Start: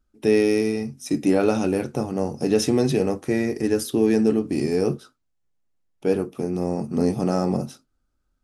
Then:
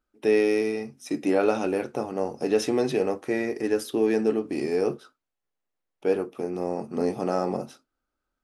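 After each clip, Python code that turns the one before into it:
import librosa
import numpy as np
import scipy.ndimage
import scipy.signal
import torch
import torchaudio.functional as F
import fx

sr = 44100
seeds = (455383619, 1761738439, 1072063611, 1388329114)

y = fx.bass_treble(x, sr, bass_db=-14, treble_db=-8)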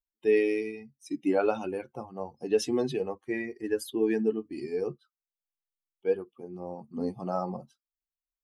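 y = fx.bin_expand(x, sr, power=2.0)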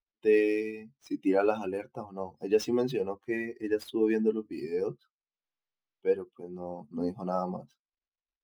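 y = scipy.ndimage.median_filter(x, 5, mode='constant')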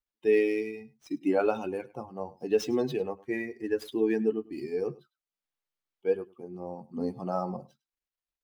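y = x + 10.0 ** (-21.0 / 20.0) * np.pad(x, (int(103 * sr / 1000.0), 0))[:len(x)]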